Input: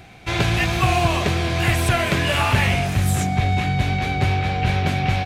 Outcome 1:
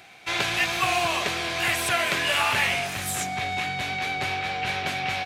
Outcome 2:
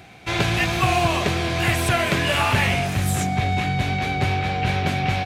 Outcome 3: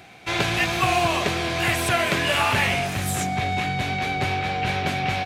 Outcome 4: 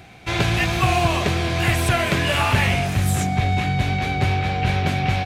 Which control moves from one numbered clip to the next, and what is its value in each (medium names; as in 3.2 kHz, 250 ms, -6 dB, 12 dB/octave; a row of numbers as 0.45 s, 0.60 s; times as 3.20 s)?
high-pass, cutoff frequency: 1 kHz, 110 Hz, 290 Hz, 42 Hz